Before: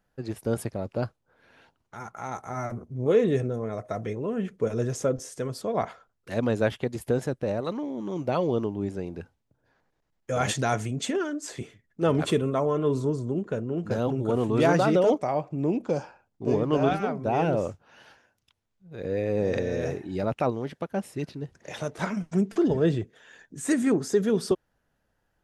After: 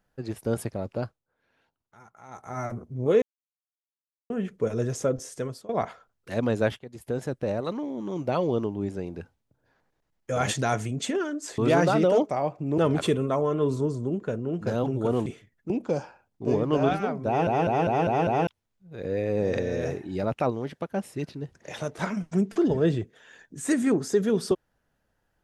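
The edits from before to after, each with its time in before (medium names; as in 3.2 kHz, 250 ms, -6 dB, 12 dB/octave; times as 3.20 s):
0.92–2.60 s: dip -13 dB, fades 0.33 s
3.22–4.30 s: mute
5.43–5.69 s: fade out, to -22 dB
6.79–7.42 s: fade in, from -19 dB
11.58–12.02 s: swap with 14.50–15.70 s
17.27 s: stutter in place 0.20 s, 6 plays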